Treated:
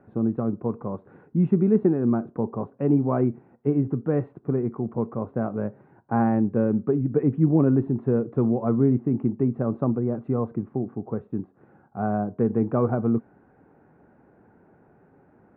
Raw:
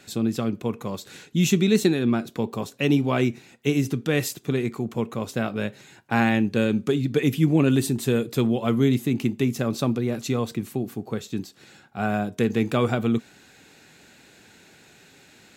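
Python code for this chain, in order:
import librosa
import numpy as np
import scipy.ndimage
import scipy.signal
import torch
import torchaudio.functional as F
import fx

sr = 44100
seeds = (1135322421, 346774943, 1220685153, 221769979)

y = scipy.signal.sosfilt(scipy.signal.cheby2(4, 70, 5000.0, 'lowpass', fs=sr, output='sos'), x)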